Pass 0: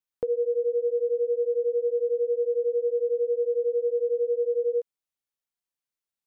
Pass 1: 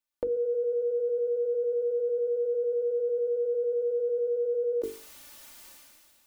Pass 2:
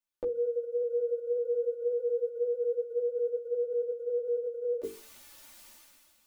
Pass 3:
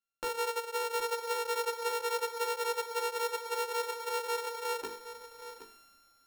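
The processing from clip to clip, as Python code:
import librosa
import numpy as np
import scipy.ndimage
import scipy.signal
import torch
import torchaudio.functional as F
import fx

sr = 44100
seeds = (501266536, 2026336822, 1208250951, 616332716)

y1 = fx.hum_notches(x, sr, base_hz=50, count=9)
y1 = y1 + 0.71 * np.pad(y1, (int(3.4 * sr / 1000.0), 0))[:len(y1)]
y1 = fx.sustainer(y1, sr, db_per_s=26.0)
y2 = fx.ensemble(y1, sr)
y3 = np.r_[np.sort(y2[:len(y2) // 32 * 32].reshape(-1, 32), axis=1).ravel(), y2[len(y2) // 32 * 32:]]
y3 = y3 + 10.0 ** (-12.0 / 20.0) * np.pad(y3, (int(769 * sr / 1000.0), 0))[:len(y3)]
y3 = y3 * librosa.db_to_amplitude(-3.5)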